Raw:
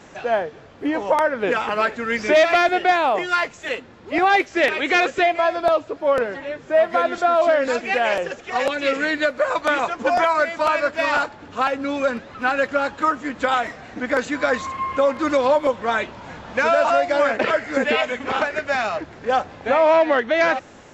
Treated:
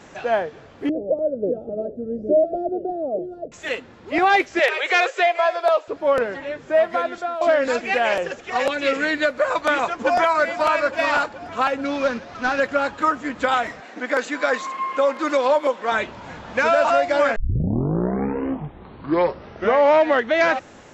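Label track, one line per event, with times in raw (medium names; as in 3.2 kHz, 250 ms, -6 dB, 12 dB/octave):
0.890000	3.520000	elliptic low-pass 620 Hz
4.590000	5.880000	steep high-pass 400 Hz 48 dB/octave
6.710000	7.410000	fade out, to -13 dB
9.920000	10.390000	echo throw 430 ms, feedback 70%, level -13 dB
11.850000	12.600000	CVSD coder 32 kbps
13.800000	15.920000	Bessel high-pass 310 Hz, order 4
17.360000	17.360000	tape start 2.72 s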